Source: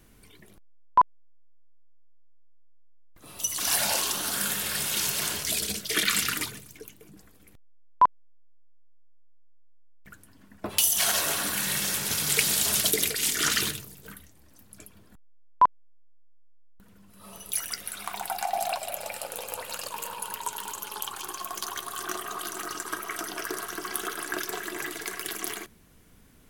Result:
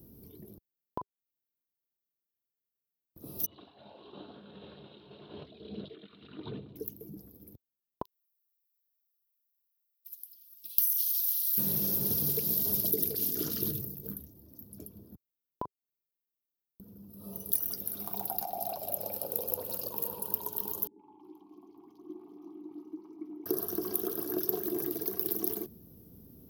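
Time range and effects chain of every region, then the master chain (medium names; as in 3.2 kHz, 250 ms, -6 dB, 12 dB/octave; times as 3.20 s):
3.46–6.76 s: bass shelf 240 Hz -9.5 dB + compressor with a negative ratio -38 dBFS + rippled Chebyshev low-pass 4 kHz, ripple 3 dB
8.02–11.58 s: inverse Chebyshev high-pass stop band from 1.5 kHz + tape noise reduction on one side only encoder only
20.87–23.46 s: vowel filter u + treble shelf 4.9 kHz -8 dB + three bands offset in time lows, mids, highs 120/330 ms, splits 550/2800 Hz
whole clip: high-pass 77 Hz; compression, threshold -28 dBFS; FFT filter 400 Hz 0 dB, 2 kHz -30 dB, 5.4 kHz -12 dB, 8.4 kHz -28 dB, 13 kHz +4 dB; trim +6 dB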